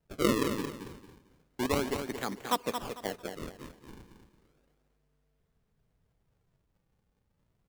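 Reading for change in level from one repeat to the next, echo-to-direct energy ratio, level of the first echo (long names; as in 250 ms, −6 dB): −11.5 dB, −7.0 dB, −7.5 dB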